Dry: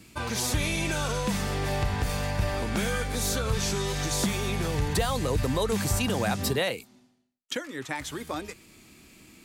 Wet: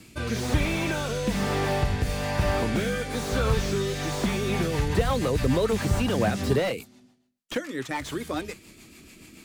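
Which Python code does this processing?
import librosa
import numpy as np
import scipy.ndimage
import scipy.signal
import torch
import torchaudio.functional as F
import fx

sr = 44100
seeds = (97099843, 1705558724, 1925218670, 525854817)

y = fx.hum_notches(x, sr, base_hz=50, count=4)
y = fx.rotary_switch(y, sr, hz=1.1, then_hz=7.0, switch_at_s=4.08)
y = fx.slew_limit(y, sr, full_power_hz=40.0)
y = y * 10.0 ** (6.0 / 20.0)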